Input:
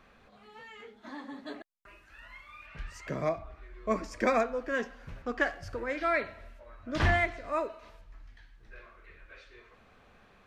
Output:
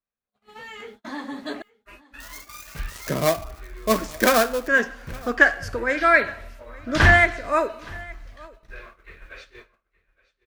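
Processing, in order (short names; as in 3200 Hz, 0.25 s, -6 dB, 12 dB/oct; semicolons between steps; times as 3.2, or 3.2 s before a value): 2.2–4.68 switching dead time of 0.14 ms; dynamic EQ 1600 Hz, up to +8 dB, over -49 dBFS, Q 4.1; gate -53 dBFS, range -39 dB; high shelf 7100 Hz +10.5 dB; AGC gain up to 8 dB; echo 0.868 s -23 dB; gain +1.5 dB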